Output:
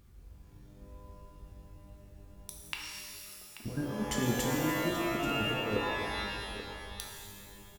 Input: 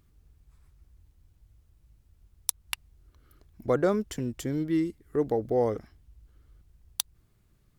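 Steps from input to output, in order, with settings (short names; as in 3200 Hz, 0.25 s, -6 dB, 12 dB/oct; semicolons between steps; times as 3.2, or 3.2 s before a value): negative-ratio compressor -32 dBFS, ratio -0.5; 2.62–3.64 BPF 470–5200 Hz; on a send: echo 0.834 s -13.5 dB; on the sum: stuck buffer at 0.45/7.03, samples 1024, times 15; shimmer reverb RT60 1.9 s, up +12 st, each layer -2 dB, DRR -1 dB; gain -3.5 dB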